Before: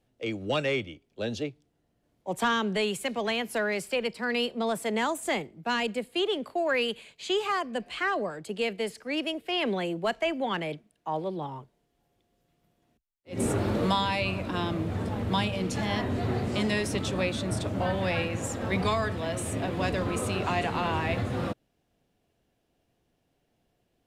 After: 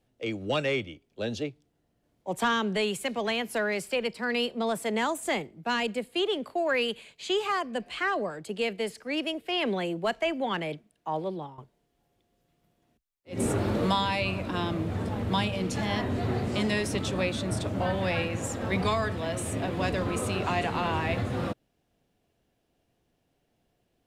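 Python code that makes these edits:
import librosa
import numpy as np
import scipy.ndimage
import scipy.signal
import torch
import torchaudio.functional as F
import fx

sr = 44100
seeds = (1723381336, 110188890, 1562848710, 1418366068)

y = fx.edit(x, sr, fx.fade_out_to(start_s=11.32, length_s=0.26, floor_db=-14.5), tone=tone)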